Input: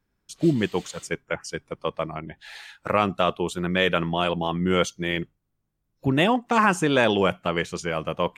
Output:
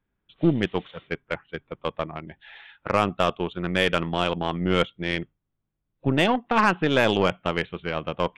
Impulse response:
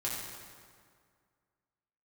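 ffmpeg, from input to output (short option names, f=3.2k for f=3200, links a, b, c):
-af "aresample=8000,aresample=44100,aeval=exprs='0.501*(cos(1*acos(clip(val(0)/0.501,-1,1)))-cos(1*PI/2))+0.0178*(cos(6*acos(clip(val(0)/0.501,-1,1)))-cos(6*PI/2))+0.0224*(cos(7*acos(clip(val(0)/0.501,-1,1)))-cos(7*PI/2))':c=same"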